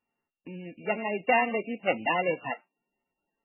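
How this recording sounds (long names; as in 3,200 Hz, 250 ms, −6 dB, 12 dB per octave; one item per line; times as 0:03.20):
a buzz of ramps at a fixed pitch in blocks of 16 samples
MP3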